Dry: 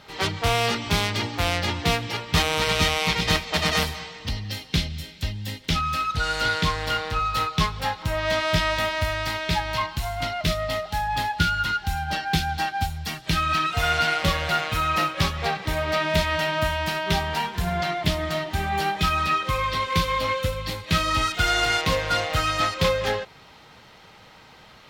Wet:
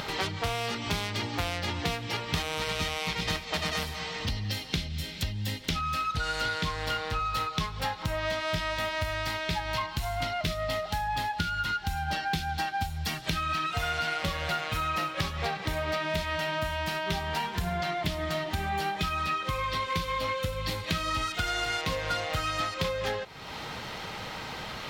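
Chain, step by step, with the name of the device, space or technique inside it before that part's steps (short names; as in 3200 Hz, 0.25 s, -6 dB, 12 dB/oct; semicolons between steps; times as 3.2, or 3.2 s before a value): upward and downward compression (upward compressor, threshold -29 dBFS; compressor 6:1, threshold -29 dBFS, peak gain reduction 13 dB); gain +1.5 dB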